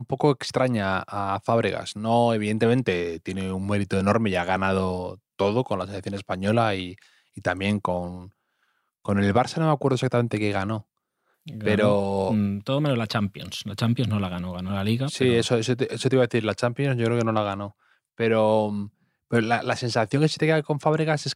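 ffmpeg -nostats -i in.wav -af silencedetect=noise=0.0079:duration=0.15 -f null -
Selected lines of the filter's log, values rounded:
silence_start: 5.15
silence_end: 5.39 | silence_duration: 0.24
silence_start: 7.02
silence_end: 7.36 | silence_duration: 0.34
silence_start: 8.29
silence_end: 9.05 | silence_duration: 0.76
silence_start: 10.81
silence_end: 11.46 | silence_duration: 0.65
silence_start: 17.70
silence_end: 18.18 | silence_duration: 0.48
silence_start: 18.88
silence_end: 19.31 | silence_duration: 0.42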